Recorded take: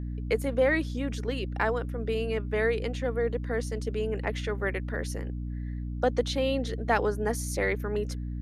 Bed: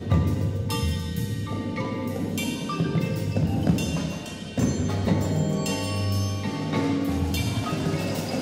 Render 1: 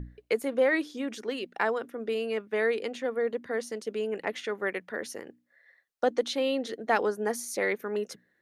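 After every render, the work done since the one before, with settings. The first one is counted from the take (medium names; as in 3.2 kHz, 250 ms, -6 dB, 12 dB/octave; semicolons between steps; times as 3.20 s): hum notches 60/120/180/240/300 Hz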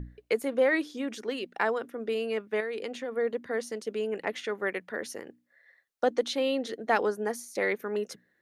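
2.60–3.15 s: compression, threshold -30 dBFS; 7.08–7.55 s: fade out equal-power, to -14 dB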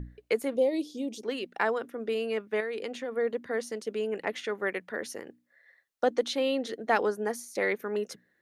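0.56–1.24 s: Butterworth band-stop 1.5 kHz, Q 0.56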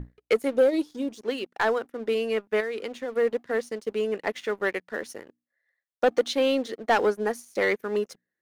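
waveshaping leveller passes 2; upward expansion 1.5:1, over -39 dBFS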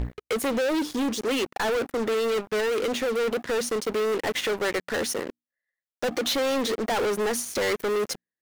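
peak limiter -22.5 dBFS, peak gain reduction 10.5 dB; waveshaping leveller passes 5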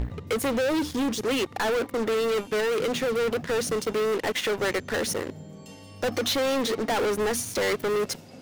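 add bed -18.5 dB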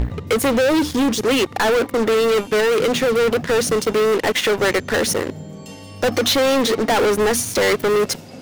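trim +8.5 dB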